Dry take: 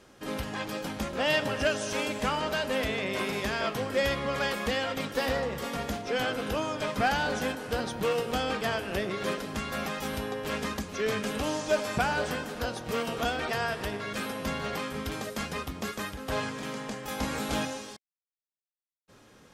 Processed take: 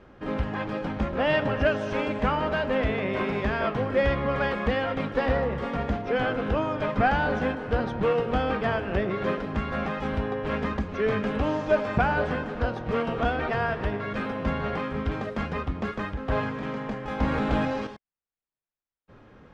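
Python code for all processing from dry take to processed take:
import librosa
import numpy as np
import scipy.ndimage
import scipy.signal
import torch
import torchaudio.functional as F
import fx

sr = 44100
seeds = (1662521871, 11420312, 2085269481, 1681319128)

y = fx.chain(x, sr, fx.resample_bad(factor=4, down='none', up='hold'),
    fx.env_flatten(amount_pct=50), at=(17.21, 17.87))
y = scipy.signal.sosfilt(scipy.signal.butter(2, 2000.0, 'lowpass', fs=sr, output='sos'), y)
y = fx.low_shelf(y, sr, hz=96.0, db=9.0)
y = y * librosa.db_to_amplitude(4.0)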